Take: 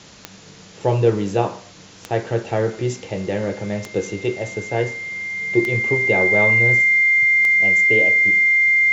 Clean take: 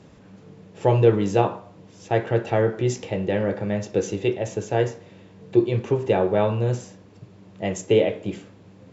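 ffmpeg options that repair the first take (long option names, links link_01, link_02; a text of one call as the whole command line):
ffmpeg -i in.wav -af "adeclick=threshold=4,bandreject=frequency=2100:width=30,afwtdn=0.0079,asetnsamples=nb_out_samples=441:pad=0,asendcmd='6.82 volume volume 4.5dB',volume=0dB" out.wav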